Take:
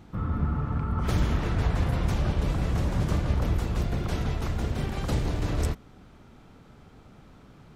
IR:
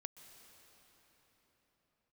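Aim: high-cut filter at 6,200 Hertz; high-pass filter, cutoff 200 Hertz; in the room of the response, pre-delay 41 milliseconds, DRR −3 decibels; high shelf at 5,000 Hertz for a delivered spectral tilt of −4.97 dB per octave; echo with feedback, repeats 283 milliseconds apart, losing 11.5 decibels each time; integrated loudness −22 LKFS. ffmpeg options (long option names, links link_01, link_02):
-filter_complex "[0:a]highpass=200,lowpass=6200,highshelf=frequency=5000:gain=5,aecho=1:1:283|566|849:0.266|0.0718|0.0194,asplit=2[link_01][link_02];[1:a]atrim=start_sample=2205,adelay=41[link_03];[link_02][link_03]afir=irnorm=-1:irlink=0,volume=8dB[link_04];[link_01][link_04]amix=inputs=2:normalize=0,volume=7dB"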